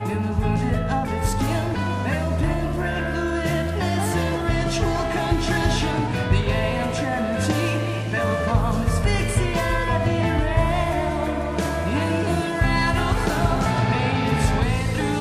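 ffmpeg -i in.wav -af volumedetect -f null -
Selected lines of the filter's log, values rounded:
mean_volume: -21.5 dB
max_volume: -7.0 dB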